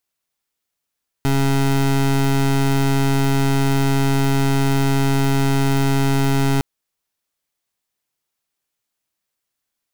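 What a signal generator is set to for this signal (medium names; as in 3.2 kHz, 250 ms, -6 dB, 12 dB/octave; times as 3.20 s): pulse 137 Hz, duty 24% -16.5 dBFS 5.36 s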